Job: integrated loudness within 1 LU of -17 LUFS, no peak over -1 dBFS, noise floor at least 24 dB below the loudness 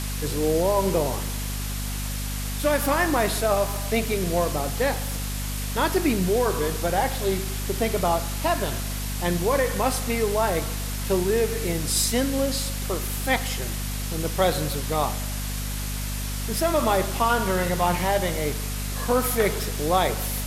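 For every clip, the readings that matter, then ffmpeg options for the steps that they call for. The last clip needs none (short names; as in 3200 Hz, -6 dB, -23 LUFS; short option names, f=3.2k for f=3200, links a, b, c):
hum 50 Hz; harmonics up to 250 Hz; hum level -28 dBFS; noise floor -29 dBFS; noise floor target -49 dBFS; loudness -24.5 LUFS; peak -8.0 dBFS; loudness target -17.0 LUFS
-> -af "bandreject=f=50:t=h:w=4,bandreject=f=100:t=h:w=4,bandreject=f=150:t=h:w=4,bandreject=f=200:t=h:w=4,bandreject=f=250:t=h:w=4"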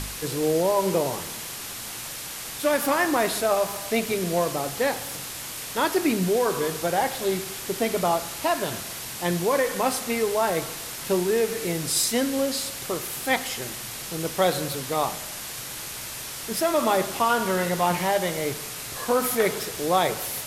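hum none; noise floor -36 dBFS; noise floor target -50 dBFS
-> -af "afftdn=nr=14:nf=-36"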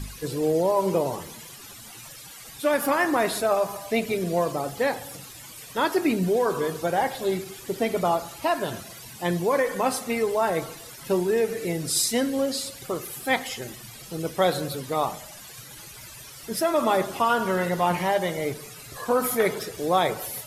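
noise floor -44 dBFS; noise floor target -50 dBFS
-> -af "afftdn=nr=6:nf=-44"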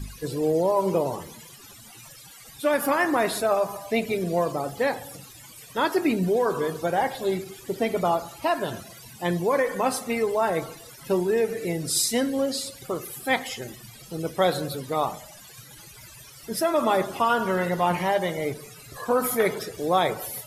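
noise floor -47 dBFS; noise floor target -50 dBFS
-> -af "afftdn=nr=6:nf=-47"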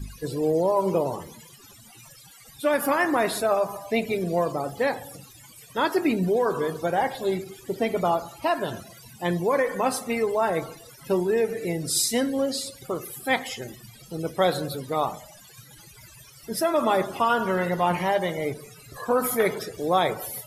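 noise floor -50 dBFS; loudness -25.5 LUFS; peak -8.5 dBFS; loudness target -17.0 LUFS
-> -af "volume=8.5dB,alimiter=limit=-1dB:level=0:latency=1"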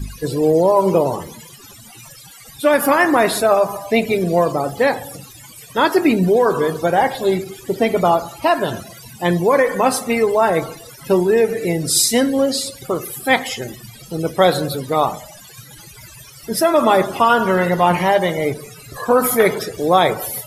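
loudness -17.0 LUFS; peak -1.0 dBFS; noise floor -41 dBFS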